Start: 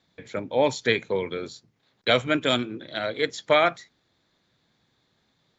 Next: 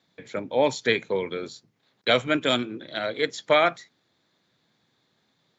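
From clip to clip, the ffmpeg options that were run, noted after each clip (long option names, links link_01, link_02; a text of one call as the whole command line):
ffmpeg -i in.wav -af "highpass=120" out.wav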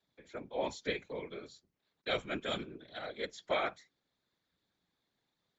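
ffmpeg -i in.wav -af "afftfilt=real='hypot(re,im)*cos(2*PI*random(0))':imag='hypot(re,im)*sin(2*PI*random(1))':win_size=512:overlap=0.75,volume=-7.5dB" out.wav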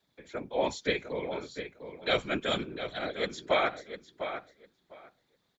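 ffmpeg -i in.wav -filter_complex "[0:a]asplit=2[link_01][link_02];[link_02]adelay=702,lowpass=frequency=3000:poles=1,volume=-9dB,asplit=2[link_03][link_04];[link_04]adelay=702,lowpass=frequency=3000:poles=1,volume=0.17,asplit=2[link_05][link_06];[link_06]adelay=702,lowpass=frequency=3000:poles=1,volume=0.17[link_07];[link_01][link_03][link_05][link_07]amix=inputs=4:normalize=0,volume=6.5dB" out.wav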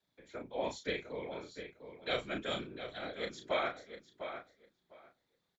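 ffmpeg -i in.wav -filter_complex "[0:a]asplit=2[link_01][link_02];[link_02]adelay=34,volume=-6dB[link_03];[link_01][link_03]amix=inputs=2:normalize=0,volume=-8dB" out.wav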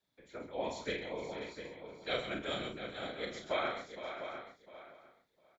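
ffmpeg -i in.wav -af "aecho=1:1:48|132|133|465|528:0.376|0.355|0.15|0.224|0.316,volume=-1.5dB" out.wav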